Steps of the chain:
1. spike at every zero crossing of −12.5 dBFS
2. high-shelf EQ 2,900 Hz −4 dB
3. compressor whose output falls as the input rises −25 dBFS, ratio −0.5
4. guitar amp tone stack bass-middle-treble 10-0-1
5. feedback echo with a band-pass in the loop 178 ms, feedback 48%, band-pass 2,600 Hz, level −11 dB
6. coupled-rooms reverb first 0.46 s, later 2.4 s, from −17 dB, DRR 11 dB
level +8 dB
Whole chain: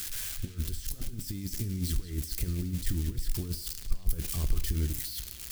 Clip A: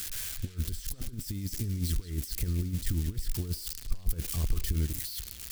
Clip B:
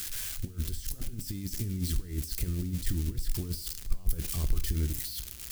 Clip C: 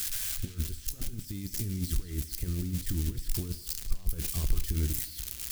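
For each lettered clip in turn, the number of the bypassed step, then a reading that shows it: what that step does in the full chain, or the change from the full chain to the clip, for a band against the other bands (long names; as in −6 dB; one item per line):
6, echo-to-direct ratio −8.5 dB to −12.0 dB
5, echo-to-direct ratio −8.5 dB to −11.0 dB
2, 8 kHz band +2.0 dB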